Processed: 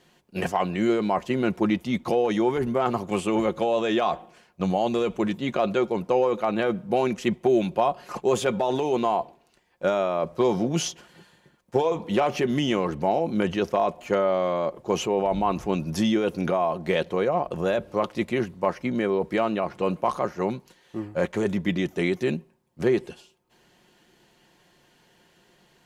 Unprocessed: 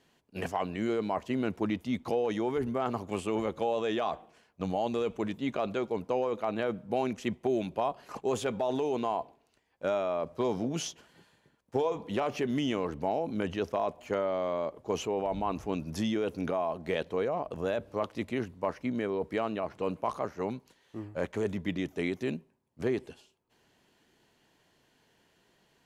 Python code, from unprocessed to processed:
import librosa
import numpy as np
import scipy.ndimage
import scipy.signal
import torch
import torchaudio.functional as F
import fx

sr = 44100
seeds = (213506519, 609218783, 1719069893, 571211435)

y = x + 0.41 * np.pad(x, (int(5.6 * sr / 1000.0), 0))[:len(x)]
y = F.gain(torch.from_numpy(y), 7.0).numpy()